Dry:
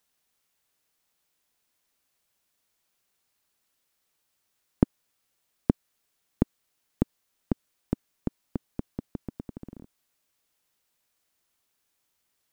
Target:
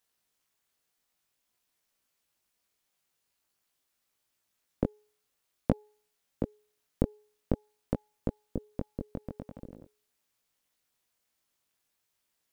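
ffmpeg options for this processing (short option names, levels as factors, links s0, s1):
-af "tremolo=f=260:d=1,flanger=delay=17.5:depth=3.6:speed=0.49,bandreject=f=421.7:t=h:w=4,bandreject=f=843.4:t=h:w=4,volume=1.58"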